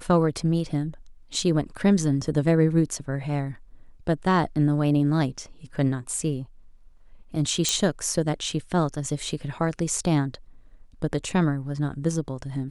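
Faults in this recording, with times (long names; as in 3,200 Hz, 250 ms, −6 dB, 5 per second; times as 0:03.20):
0:07.69: click −8 dBFS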